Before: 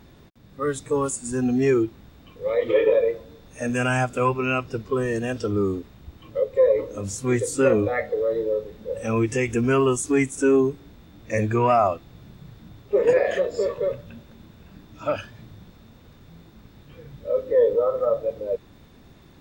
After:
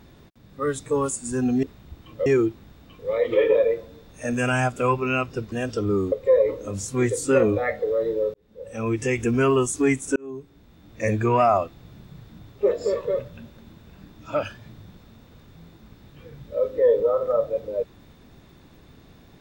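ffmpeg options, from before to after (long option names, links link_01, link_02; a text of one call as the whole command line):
ffmpeg -i in.wav -filter_complex "[0:a]asplit=8[link_01][link_02][link_03][link_04][link_05][link_06][link_07][link_08];[link_01]atrim=end=1.632[link_09];[link_02]atrim=start=5.788:end=6.422[link_10];[link_03]atrim=start=1.628:end=4.892[link_11];[link_04]atrim=start=5.188:end=5.792[link_12];[link_05]atrim=start=6.418:end=8.64,asetpts=PTS-STARTPTS,afade=type=out:start_time=2.218:duration=0.004:curve=hsin[link_13];[link_06]atrim=start=8.64:end=10.46,asetpts=PTS-STARTPTS,afade=type=in:duration=0.79,afade=type=out:start_time=1.816:duration=0.004:curve=hsin[link_14];[link_07]atrim=start=10.46:end=13.012,asetpts=PTS-STARTPTS,afade=type=in:duration=0.9[link_15];[link_08]atrim=start=13.438[link_16];[link_09][link_10]acrossfade=duration=0.004:curve1=hsin:curve2=hsin[link_17];[link_17][link_11]acrossfade=duration=0.004:curve1=hsin:curve2=hsin[link_18];[link_18][link_12]acrossfade=duration=0.004:curve1=hsin:curve2=hsin[link_19];[link_13][link_14][link_15]concat=n=3:v=0:a=1[link_20];[link_19][link_20]acrossfade=duration=0.004:curve1=hsin:curve2=hsin[link_21];[link_21][link_16]acrossfade=duration=0.004:curve1=hsin:curve2=hsin" out.wav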